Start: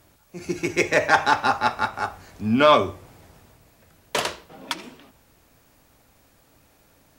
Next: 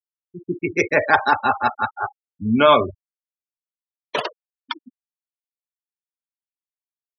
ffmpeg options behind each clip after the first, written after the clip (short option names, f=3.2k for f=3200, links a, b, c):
-af "afftfilt=real='re*gte(hypot(re,im),0.0891)':imag='im*gte(hypot(re,im),0.0891)':win_size=1024:overlap=0.75,volume=2dB"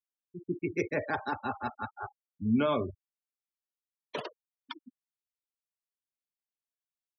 -filter_complex "[0:a]acrossover=split=420[a][b];[b]acompressor=threshold=-45dB:ratio=1.5[c];[a][c]amix=inputs=2:normalize=0,volume=-7dB"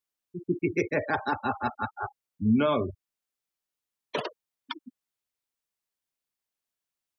-af "alimiter=limit=-21dB:level=0:latency=1:release=483,volume=6dB"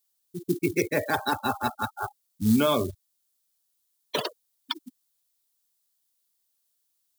-af "acrusher=bits=7:mode=log:mix=0:aa=0.000001,aexciter=amount=2.8:drive=6.1:freq=3.4k,volume=1.5dB"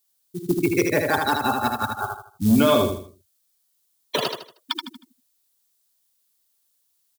-filter_complex "[0:a]volume=16dB,asoftclip=hard,volume=-16dB,asplit=2[a][b];[b]aecho=0:1:78|156|234|312:0.596|0.203|0.0689|0.0234[c];[a][c]amix=inputs=2:normalize=0,volume=4dB"